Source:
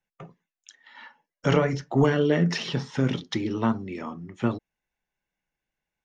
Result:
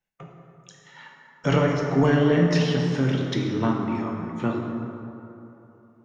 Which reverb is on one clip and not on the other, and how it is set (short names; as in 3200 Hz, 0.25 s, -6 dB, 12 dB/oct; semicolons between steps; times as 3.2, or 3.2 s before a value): plate-style reverb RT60 3 s, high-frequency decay 0.45×, DRR 0 dB; gain -1 dB